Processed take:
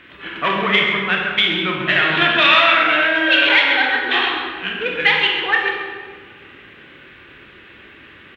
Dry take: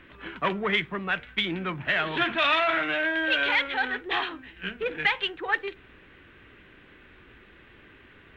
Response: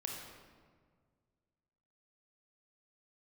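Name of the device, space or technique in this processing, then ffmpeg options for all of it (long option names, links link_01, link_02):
PA in a hall: -filter_complex "[0:a]highpass=frequency=140:poles=1,equalizer=frequency=3500:width_type=o:width=2.1:gain=6,aecho=1:1:133:0.299[link_01];[1:a]atrim=start_sample=2205[link_02];[link_01][link_02]afir=irnorm=-1:irlink=0,volume=7.5dB"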